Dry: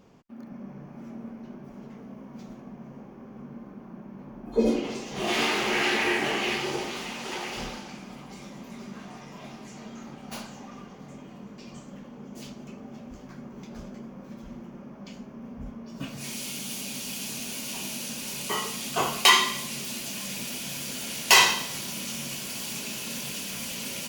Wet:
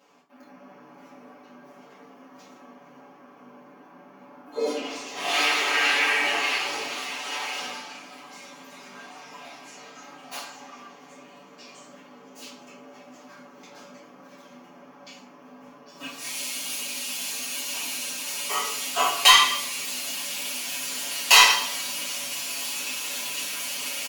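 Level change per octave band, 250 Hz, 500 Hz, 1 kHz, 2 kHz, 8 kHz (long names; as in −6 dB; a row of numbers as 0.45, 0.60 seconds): −9.5, −2.5, +3.5, +3.5, +3.5 decibels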